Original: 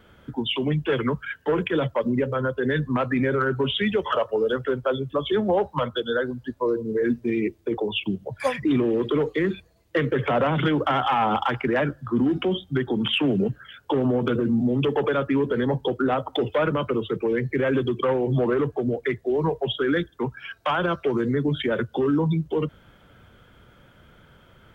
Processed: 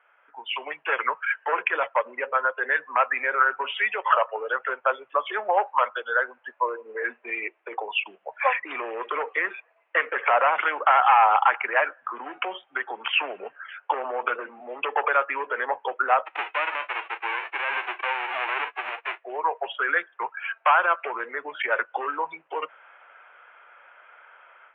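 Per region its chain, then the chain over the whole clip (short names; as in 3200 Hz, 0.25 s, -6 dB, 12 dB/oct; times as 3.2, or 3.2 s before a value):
16.25–19.21 spectral whitening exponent 0.1 + ladder high-pass 220 Hz, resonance 25% + bell 330 Hz +12.5 dB 0.54 oct
whole clip: HPF 720 Hz 24 dB/oct; AGC gain up to 11 dB; elliptic low-pass 2600 Hz, stop band 50 dB; gain -3 dB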